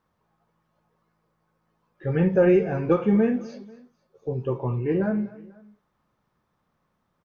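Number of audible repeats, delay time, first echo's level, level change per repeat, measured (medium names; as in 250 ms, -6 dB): 2, 245 ms, -20.0 dB, -6.0 dB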